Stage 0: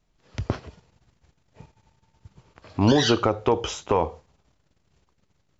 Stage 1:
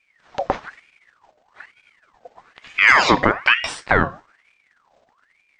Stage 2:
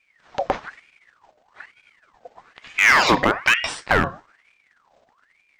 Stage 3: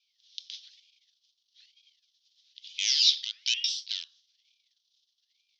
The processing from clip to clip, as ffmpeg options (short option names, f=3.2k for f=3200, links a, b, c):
-af "highshelf=f=6.3k:g=-11,aeval=exprs='val(0)*sin(2*PI*1500*n/s+1500*0.6/1.1*sin(2*PI*1.1*n/s))':c=same,volume=8dB"
-af "asoftclip=type=hard:threshold=-9dB"
-af "asuperpass=centerf=4400:order=8:qfactor=1.6,volume=4.5dB"